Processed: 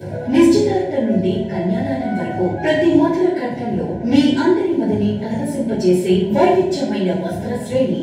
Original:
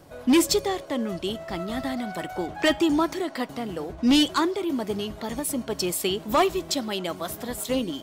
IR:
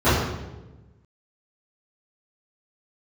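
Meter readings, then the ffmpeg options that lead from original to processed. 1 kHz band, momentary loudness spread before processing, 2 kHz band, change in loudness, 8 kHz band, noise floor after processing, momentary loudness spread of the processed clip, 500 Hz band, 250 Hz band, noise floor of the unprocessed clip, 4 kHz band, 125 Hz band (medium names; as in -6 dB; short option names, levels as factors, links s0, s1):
+5.5 dB, 12 LU, +4.5 dB, +8.5 dB, no reading, -26 dBFS, 8 LU, +10.5 dB, +9.5 dB, -42 dBFS, -2.0 dB, +16.0 dB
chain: -filter_complex "[0:a]acompressor=mode=upward:threshold=0.0398:ratio=2.5,asuperstop=centerf=1200:order=20:qfactor=3.1[s0];[1:a]atrim=start_sample=2205,asetrate=66150,aresample=44100[s1];[s0][s1]afir=irnorm=-1:irlink=0,volume=0.168"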